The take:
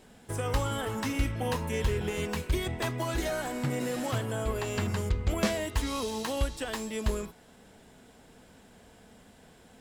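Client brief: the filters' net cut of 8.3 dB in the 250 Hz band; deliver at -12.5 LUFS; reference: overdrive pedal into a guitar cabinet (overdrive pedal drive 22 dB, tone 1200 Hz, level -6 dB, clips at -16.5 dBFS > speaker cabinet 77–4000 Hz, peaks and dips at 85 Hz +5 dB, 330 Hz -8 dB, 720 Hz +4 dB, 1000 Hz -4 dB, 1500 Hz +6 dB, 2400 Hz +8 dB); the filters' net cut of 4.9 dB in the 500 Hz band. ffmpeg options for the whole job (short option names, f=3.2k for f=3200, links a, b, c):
-filter_complex "[0:a]equalizer=f=250:t=o:g=-7.5,equalizer=f=500:t=o:g=-4.5,asplit=2[a][b];[b]highpass=f=720:p=1,volume=22dB,asoftclip=type=tanh:threshold=-16.5dB[c];[a][c]amix=inputs=2:normalize=0,lowpass=f=1.2k:p=1,volume=-6dB,highpass=77,equalizer=f=85:t=q:w=4:g=5,equalizer=f=330:t=q:w=4:g=-8,equalizer=f=720:t=q:w=4:g=4,equalizer=f=1k:t=q:w=4:g=-4,equalizer=f=1.5k:t=q:w=4:g=6,equalizer=f=2.4k:t=q:w=4:g=8,lowpass=f=4k:w=0.5412,lowpass=f=4k:w=1.3066,volume=15.5dB"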